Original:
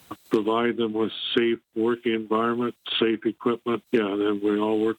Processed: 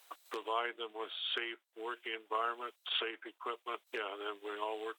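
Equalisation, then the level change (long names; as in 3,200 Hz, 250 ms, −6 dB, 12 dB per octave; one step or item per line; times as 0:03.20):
high-pass filter 560 Hz 24 dB per octave
−8.5 dB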